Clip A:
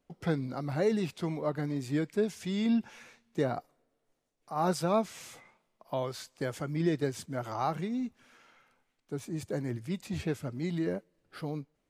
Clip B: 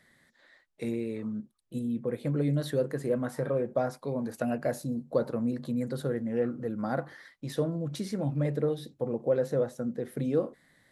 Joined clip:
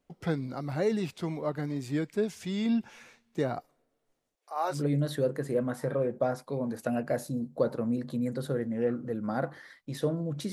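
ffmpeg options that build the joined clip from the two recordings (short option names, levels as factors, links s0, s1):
-filter_complex "[0:a]asettb=1/sr,asplit=3[s0][s1][s2];[s0]atrim=end=4.354[s3];[s1]atrim=start=4.35:end=4.85,asetpts=PTS-STARTPTS,afade=t=in:d=0.004:c=qsin,afade=t=out:st=0.496:d=0.004:c=qsin,highpass=f=450:w=0.5412,highpass=f=450:w=1.3066[s4];[s2]atrim=start=4.846[s5];[s3][s4]acrossfade=d=0.004:c1=hsin:c2=qsin[s6];[s6][s5]acrossfade=d=0.004:c1=qsin:c2=hsin,apad=whole_dur=10.52,atrim=end=10.52,atrim=end=4.85,asetpts=PTS-STARTPTS[s7];[1:a]atrim=start=2.24:end=8.07,asetpts=PTS-STARTPTS[s8];[s7][s8]acrossfade=d=0.16:c1=tri:c2=tri"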